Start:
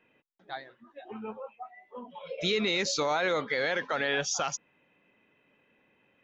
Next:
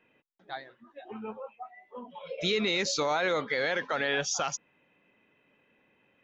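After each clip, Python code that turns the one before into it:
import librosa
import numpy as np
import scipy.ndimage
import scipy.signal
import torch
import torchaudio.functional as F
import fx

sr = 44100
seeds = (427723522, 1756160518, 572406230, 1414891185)

y = x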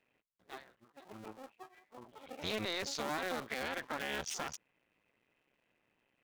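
y = fx.cycle_switch(x, sr, every=2, mode='muted')
y = F.gain(torch.from_numpy(y), -7.0).numpy()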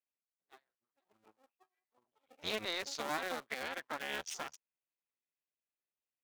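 y = fx.low_shelf(x, sr, hz=290.0, db=-8.0)
y = fx.upward_expand(y, sr, threshold_db=-56.0, expansion=2.5)
y = F.gain(torch.from_numpy(y), 3.0).numpy()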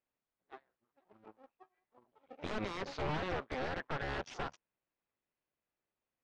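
y = 10.0 ** (-37.5 / 20.0) * (np.abs((x / 10.0 ** (-37.5 / 20.0) + 3.0) % 4.0 - 2.0) - 1.0)
y = fx.spacing_loss(y, sr, db_at_10k=38)
y = F.gain(torch.from_numpy(y), 12.5).numpy()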